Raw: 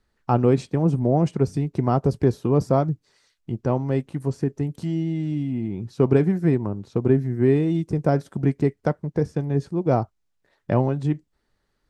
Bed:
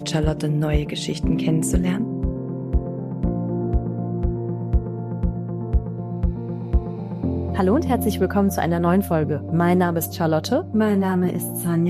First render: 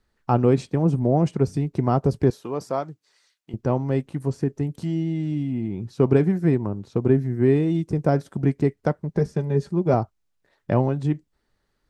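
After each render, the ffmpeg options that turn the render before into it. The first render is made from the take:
-filter_complex "[0:a]asettb=1/sr,asplit=3[s0][s1][s2];[s0]atrim=end=2.304[s3];[s1]atrim=start=2.3:end=3.54,asetpts=PTS-STARTPTS,afade=t=in:d=0.004:c=qsin,afade=t=out:st=1.236:d=0.004:c=qsin,highpass=f=880:p=1[s4];[s2]atrim=start=3.536[s5];[s3][s4]acrossfade=d=0.004:c1=hsin:c2=qsin[s6];[s6][s5]acrossfade=d=0.004:c1=qsin:c2=hsin,asettb=1/sr,asplit=3[s7][s8][s9];[s7]atrim=end=9.094[s10];[s8]atrim=start=9.09:end=9.94,asetpts=PTS-STARTPTS,afade=t=in:d=0.004:c=qsin,afade=t=out:st=0.846:d=0.004:c=qsin,aecho=1:1:5:0.65,atrim=end_sample=37485[s11];[s9]atrim=start=9.936[s12];[s10][s11]acrossfade=d=0.004:c1=hsin:c2=qsin[s13];[s13][s12]acrossfade=d=0.004:c1=qsin:c2=hsin"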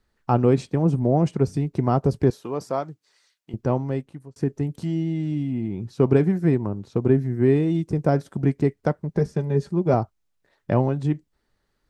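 -filter_complex "[0:a]asplit=2[s0][s1];[s0]atrim=end=4.36,asetpts=PTS-STARTPTS,afade=t=out:st=3.74:d=0.62[s2];[s1]atrim=start=4.36,asetpts=PTS-STARTPTS,afade=t=in:d=0.004:c=hsin[s3];[s2][s3]concat=n=2:v=0:a=1"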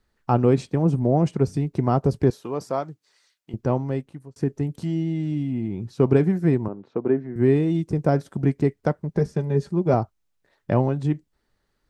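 -filter_complex "[0:a]asettb=1/sr,asplit=3[s0][s1][s2];[s0]atrim=end=6.684[s3];[s1]atrim=start=6.68:end=7.36,asetpts=PTS-STARTPTS,afade=t=in:d=0.004:c=qsin,afade=t=out:st=0.676:d=0.004:c=qsin,highpass=270,lowpass=2100[s4];[s2]atrim=start=7.356[s5];[s3][s4]acrossfade=d=0.004:c1=hsin:c2=qsin[s6];[s6][s5]acrossfade=d=0.004:c1=qsin:c2=hsin"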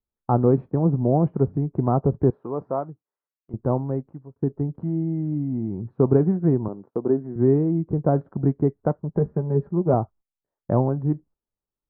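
-af "lowpass=f=1200:w=0.5412,lowpass=f=1200:w=1.3066,agate=range=0.1:threshold=0.00562:ratio=16:detection=peak"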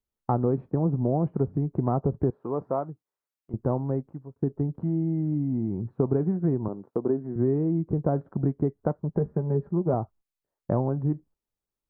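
-af "acompressor=threshold=0.0794:ratio=3"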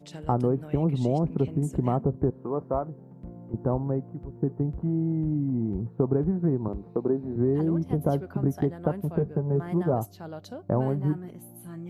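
-filter_complex "[1:a]volume=0.106[s0];[0:a][s0]amix=inputs=2:normalize=0"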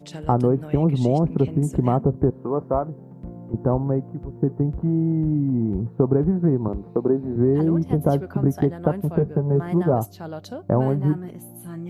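-af "volume=1.88"

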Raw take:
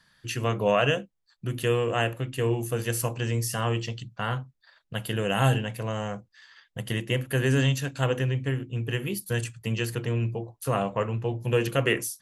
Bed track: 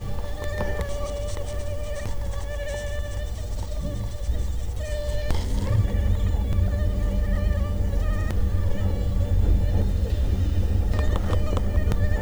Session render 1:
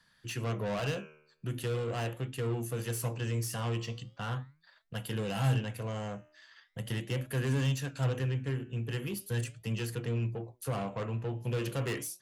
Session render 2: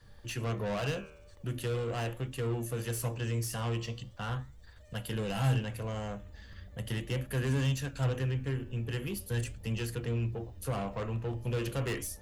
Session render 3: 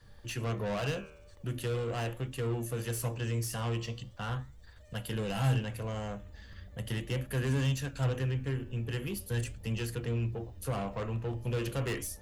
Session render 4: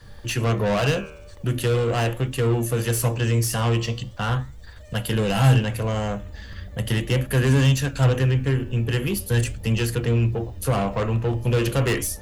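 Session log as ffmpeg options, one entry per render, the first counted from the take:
-filter_complex "[0:a]flanger=delay=4.1:depth=9.1:regen=88:speed=0.4:shape=sinusoidal,acrossover=split=200[s0][s1];[s1]asoftclip=type=tanh:threshold=0.0237[s2];[s0][s2]amix=inputs=2:normalize=0"
-filter_complex "[1:a]volume=0.0447[s0];[0:a][s0]amix=inputs=2:normalize=0"
-af anull
-af "volume=3.98"

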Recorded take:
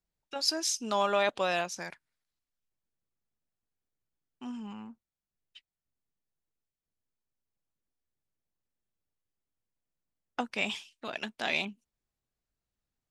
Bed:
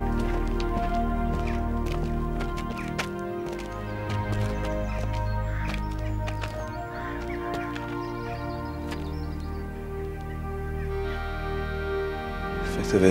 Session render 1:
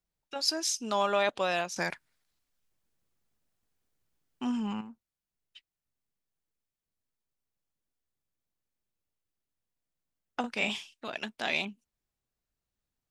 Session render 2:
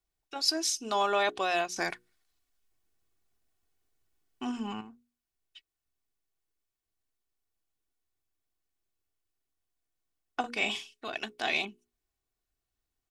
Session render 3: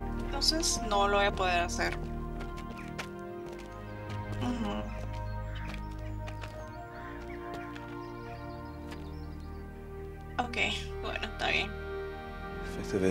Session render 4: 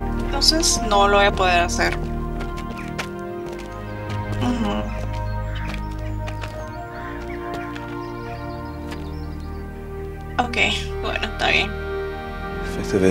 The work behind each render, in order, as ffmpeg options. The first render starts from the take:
-filter_complex "[0:a]asettb=1/sr,asplit=3[s0][s1][s2];[s0]atrim=end=10.404[s3];[s1]atrim=start=10.4:end=10.94,asetpts=PTS-STARTPTS,afade=t=in:d=0.004:c=qsin,afade=t=out:st=0.536:d=0.004:c=qsin,asplit=2[s4][s5];[s5]adelay=38,volume=0.531[s6];[s4][s6]amix=inputs=2:normalize=0,atrim=end_sample=23814[s7];[s2]atrim=start=10.936[s8];[s3][s7]acrossfade=d=0.004:c1=hsin:c2=qsin[s9];[s9][s8]acrossfade=d=0.004:c1=qsin:c2=hsin,asplit=3[s10][s11][s12];[s10]atrim=end=1.762[s13];[s11]atrim=start=1.758:end=4.812,asetpts=PTS-STARTPTS,volume=2.66[s14];[s12]atrim=start=4.808[s15];[s13][s14]acrossfade=d=0.004:c1=hsin:c2=hsin[s16];[s16][s15]acrossfade=d=0.004:c1=hsin:c2=hsin"
-af "bandreject=f=60:t=h:w=6,bandreject=f=120:t=h:w=6,bandreject=f=180:t=h:w=6,bandreject=f=240:t=h:w=6,bandreject=f=300:t=h:w=6,bandreject=f=360:t=h:w=6,bandreject=f=420:t=h:w=6,bandreject=f=480:t=h:w=6,aecho=1:1:2.7:0.51"
-filter_complex "[1:a]volume=0.335[s0];[0:a][s0]amix=inputs=2:normalize=0"
-af "volume=3.76"

